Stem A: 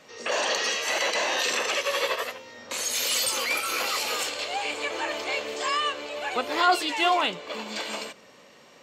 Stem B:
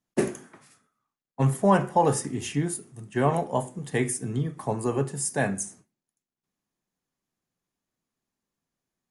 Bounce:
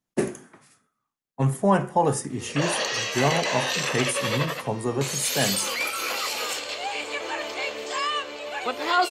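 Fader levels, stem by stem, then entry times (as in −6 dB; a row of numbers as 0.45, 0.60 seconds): −0.5, 0.0 decibels; 2.30, 0.00 seconds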